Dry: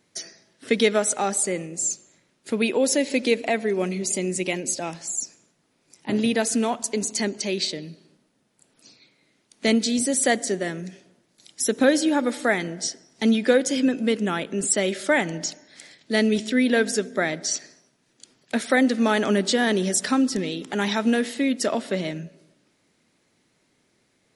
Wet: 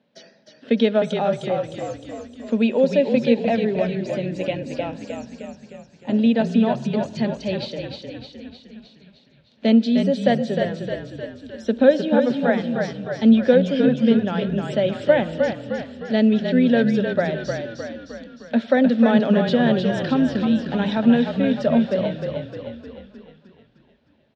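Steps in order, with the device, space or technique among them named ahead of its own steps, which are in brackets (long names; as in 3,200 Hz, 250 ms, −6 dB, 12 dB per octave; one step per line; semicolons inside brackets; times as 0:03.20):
frequency-shifting delay pedal into a guitar cabinet (echo with shifted repeats 307 ms, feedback 57%, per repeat −39 Hz, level −5 dB; loudspeaker in its box 97–3,500 Hz, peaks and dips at 99 Hz −10 dB, 230 Hz +8 dB, 340 Hz −9 dB, 570 Hz +8 dB, 1,200 Hz −7 dB, 2,100 Hz −10 dB)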